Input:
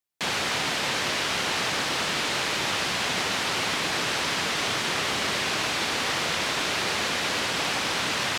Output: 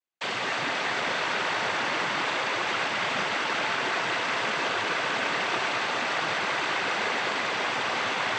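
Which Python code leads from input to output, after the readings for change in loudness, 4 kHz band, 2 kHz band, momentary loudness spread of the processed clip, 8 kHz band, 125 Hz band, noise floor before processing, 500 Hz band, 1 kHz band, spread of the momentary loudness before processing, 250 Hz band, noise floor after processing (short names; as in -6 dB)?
-1.5 dB, -5.0 dB, +0.5 dB, 1 LU, -10.0 dB, -6.5 dB, -28 dBFS, +0.5 dB, +1.5 dB, 0 LU, -3.5 dB, -30 dBFS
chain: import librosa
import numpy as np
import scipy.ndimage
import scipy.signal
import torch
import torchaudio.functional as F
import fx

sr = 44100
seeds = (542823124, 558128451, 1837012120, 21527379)

y = fx.noise_vocoder(x, sr, seeds[0], bands=16)
y = fx.bass_treble(y, sr, bass_db=-6, treble_db=-11)
y = fx.echo_wet_bandpass(y, sr, ms=197, feedback_pct=75, hz=1100.0, wet_db=-4.0)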